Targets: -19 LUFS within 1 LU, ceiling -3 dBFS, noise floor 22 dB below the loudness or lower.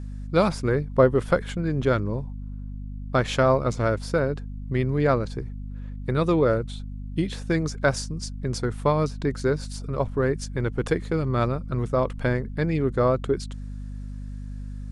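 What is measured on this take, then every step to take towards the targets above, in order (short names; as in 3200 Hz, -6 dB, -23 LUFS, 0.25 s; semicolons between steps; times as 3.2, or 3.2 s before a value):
hum 50 Hz; harmonics up to 250 Hz; hum level -32 dBFS; loudness -25.0 LUFS; peak -5.0 dBFS; loudness target -19.0 LUFS
-> de-hum 50 Hz, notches 5; gain +6 dB; limiter -3 dBFS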